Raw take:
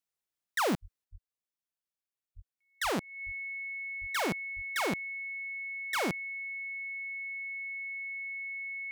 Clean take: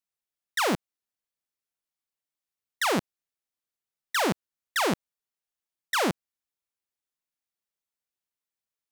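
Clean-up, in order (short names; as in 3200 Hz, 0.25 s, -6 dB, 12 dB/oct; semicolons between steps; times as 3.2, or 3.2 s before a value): clip repair -26 dBFS; notch 2200 Hz, Q 30; de-plosive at 0.81/1.11/2.35/2.83/3.25/4/4.55; gain correction +6 dB, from 1.04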